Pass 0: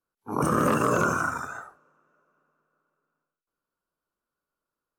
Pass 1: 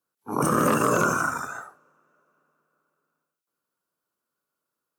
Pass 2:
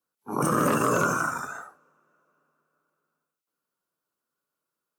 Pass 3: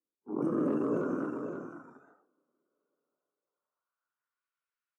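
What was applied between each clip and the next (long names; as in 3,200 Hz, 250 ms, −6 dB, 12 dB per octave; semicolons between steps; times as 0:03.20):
high-pass filter 110 Hz 12 dB per octave; high-shelf EQ 5,800 Hz +6.5 dB; level +1.5 dB
flanger 0.58 Hz, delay 3.6 ms, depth 4.3 ms, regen −64%; level +2.5 dB
band-pass filter sweep 320 Hz → 2,100 Hz, 0:02.56–0:04.42; single-tap delay 521 ms −7 dB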